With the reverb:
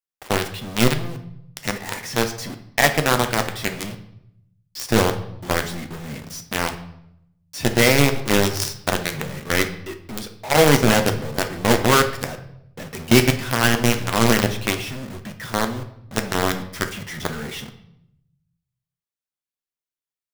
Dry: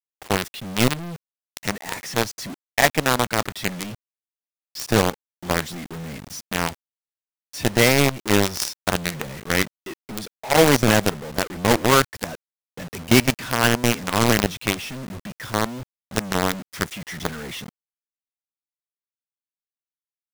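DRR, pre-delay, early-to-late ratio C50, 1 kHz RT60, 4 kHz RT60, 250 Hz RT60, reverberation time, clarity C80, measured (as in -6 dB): 6.0 dB, 8 ms, 11.0 dB, 0.70 s, 0.65 s, 1.1 s, 0.75 s, 14.5 dB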